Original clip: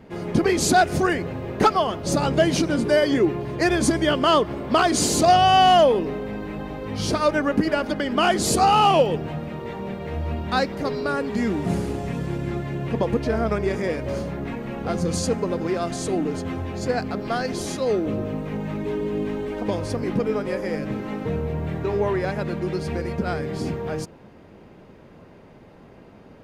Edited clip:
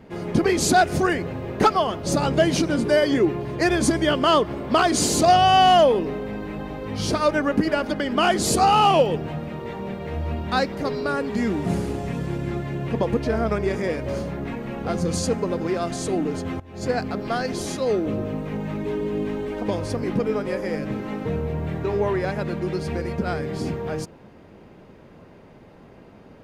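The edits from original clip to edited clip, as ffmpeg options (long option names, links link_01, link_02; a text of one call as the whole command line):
ffmpeg -i in.wav -filter_complex "[0:a]asplit=2[link_01][link_02];[link_01]atrim=end=16.6,asetpts=PTS-STARTPTS,afade=type=out:start_time=16.596:duration=0.004:curve=hsin:silence=0.125893[link_03];[link_02]atrim=start=16.6,asetpts=PTS-STARTPTS,afade=type=in:duration=0.25:curve=qua:silence=0.125893[link_04];[link_03][link_04]concat=n=2:v=0:a=1" out.wav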